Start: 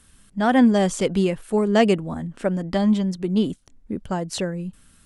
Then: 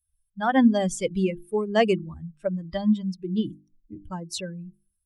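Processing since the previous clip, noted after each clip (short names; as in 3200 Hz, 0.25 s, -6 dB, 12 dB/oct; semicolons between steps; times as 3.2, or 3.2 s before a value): per-bin expansion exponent 2; notches 50/100/150/200/250/300/350 Hz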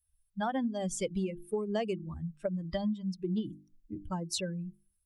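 dynamic EQ 1600 Hz, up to -5 dB, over -42 dBFS, Q 1.3; compressor 12:1, threshold -29 dBFS, peak gain reduction 17 dB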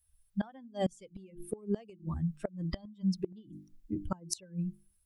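flipped gate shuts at -26 dBFS, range -25 dB; gain +5.5 dB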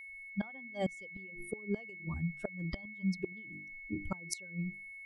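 whine 2200 Hz -43 dBFS; gain -3 dB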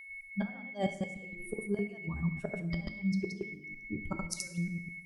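reverse delay 0.104 s, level -2 dB; two-slope reverb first 0.79 s, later 2 s, from -28 dB, DRR 8 dB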